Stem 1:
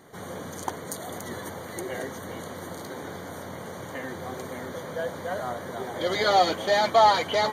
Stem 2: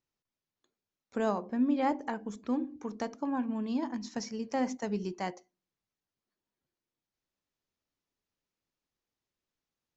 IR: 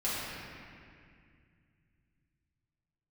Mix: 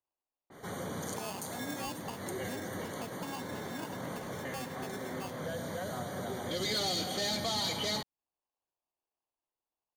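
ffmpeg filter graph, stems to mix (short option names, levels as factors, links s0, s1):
-filter_complex "[0:a]adynamicequalizer=threshold=0.0112:dfrequency=4200:dqfactor=0.7:tfrequency=4200:tqfactor=0.7:attack=5:release=100:ratio=0.375:range=2:mode=boostabove:tftype=highshelf,adelay=500,volume=0.841,asplit=2[s0][s1];[s1]volume=0.237[s2];[1:a]acrusher=samples=23:mix=1:aa=0.000001,lowshelf=f=280:t=q:w=1.5:g=-11.5,aecho=1:1:1.1:0.48,volume=0.501,asplit=2[s3][s4];[s4]apad=whole_len=353990[s5];[s0][s5]sidechaincompress=threshold=0.00501:ratio=8:attack=5.8:release=236[s6];[2:a]atrim=start_sample=2205[s7];[s2][s7]afir=irnorm=-1:irlink=0[s8];[s6][s3][s8]amix=inputs=3:normalize=0,acrossover=split=300|3000[s9][s10][s11];[s10]acompressor=threshold=0.0126:ratio=6[s12];[s9][s12][s11]amix=inputs=3:normalize=0,asoftclip=type=tanh:threshold=0.0473"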